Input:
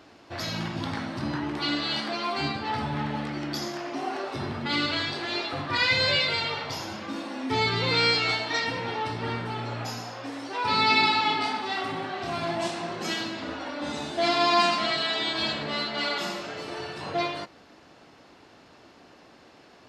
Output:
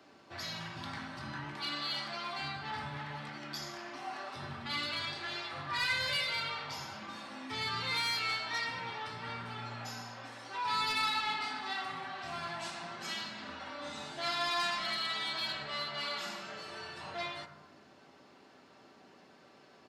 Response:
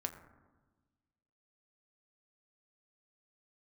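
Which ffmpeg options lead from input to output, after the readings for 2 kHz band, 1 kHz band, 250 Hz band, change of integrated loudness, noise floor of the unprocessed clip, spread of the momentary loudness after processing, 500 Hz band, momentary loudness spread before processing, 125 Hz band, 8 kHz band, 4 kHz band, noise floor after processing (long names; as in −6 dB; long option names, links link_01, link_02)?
−8.0 dB, −9.5 dB, −16.0 dB, −9.5 dB, −54 dBFS, 12 LU, −14.5 dB, 13 LU, −12.5 dB, −6.0 dB, −8.5 dB, −60 dBFS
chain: -filter_complex "[0:a]highpass=110,aecho=1:1:5.2:0.33,acrossover=split=150|760|1700[link_01][link_02][link_03][link_04];[link_02]acompressor=threshold=-47dB:ratio=6[link_05];[link_01][link_05][link_03][link_04]amix=inputs=4:normalize=0,asoftclip=type=tanh:threshold=-19dB[link_06];[1:a]atrim=start_sample=2205[link_07];[link_06][link_07]afir=irnorm=-1:irlink=0,volume=-6dB"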